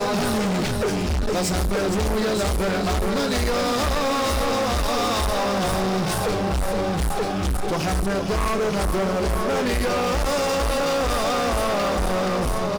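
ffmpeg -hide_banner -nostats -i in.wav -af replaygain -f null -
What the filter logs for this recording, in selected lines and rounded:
track_gain = +6.4 dB
track_peak = 0.102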